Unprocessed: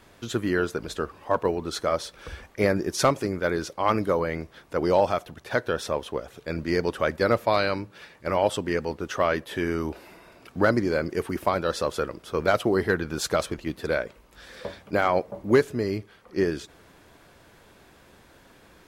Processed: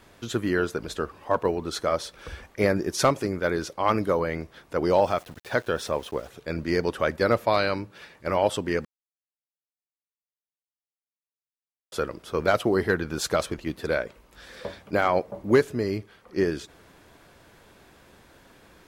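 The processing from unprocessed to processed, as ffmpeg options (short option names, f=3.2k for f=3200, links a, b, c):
-filter_complex "[0:a]asettb=1/sr,asplit=3[a][b][c];[a]atrim=end=4.944[d];[b]atrim=start=4.94:end=6.28,asetpts=PTS-STARTPTS,afade=t=in:d=0.004:c=qsin,afade=t=out:st=1.336:d=0.004:c=qsin,aeval=exprs='val(0)*gte(abs(val(0)),0.00501)':c=same[e];[c]atrim=start=6.276[f];[d][e]acrossfade=d=0.004:c1=hsin:c2=qsin[g];[g][f]acrossfade=d=0.004:c1=qsin:c2=hsin,asplit=3[h][i][j];[h]atrim=end=8.85,asetpts=PTS-STARTPTS,afade=t=out:st=8.846:d=0.004:c=hsin[k];[i]atrim=start=8.85:end=11.92,asetpts=PTS-STARTPTS,volume=0[l];[j]atrim=start=11.92,asetpts=PTS-STARTPTS,afade=t=in:d=0.004:c=hsin[m];[k][l][m]concat=n=3:v=0:a=1"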